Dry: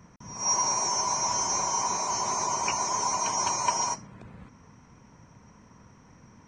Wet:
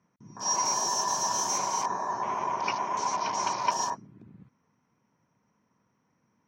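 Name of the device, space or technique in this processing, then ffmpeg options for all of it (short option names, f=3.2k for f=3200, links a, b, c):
over-cleaned archive recording: -filter_complex "[0:a]highpass=150,lowpass=6k,afwtdn=0.0141,asettb=1/sr,asplit=3[a][b][c];[a]atrim=end=0.654[d];[b]atrim=start=0.65:end=1.58,asetpts=PTS-STARTPTS,afade=t=in:d=0.004:c=qsin,afade=t=out:st=0.926:d=0.004:c=qsin,highshelf=f=8.1k:g=7[e];[c]atrim=start=1.576[f];[d][e]acrossfade=d=0.004:c1=hsin:c2=qsin[g];[g][f]acrossfade=d=0.004:c1=qsin:c2=hsin,asettb=1/sr,asplit=3[h][i][j];[h]atrim=end=2.134[k];[i]atrim=start=2.13:end=3.6,asetpts=PTS-STARTPTS,afade=t=in:d=0.004:c=qsin,afade=t=out:st=1.466:d=0.004:c=qsin,lowpass=6.4k[l];[j]atrim=start=3.596[m];[k][l]acrossfade=d=0.004:c1=hsin:c2=qsin[n];[n][m]acrossfade=d=0.004:c1=qsin:c2=hsin"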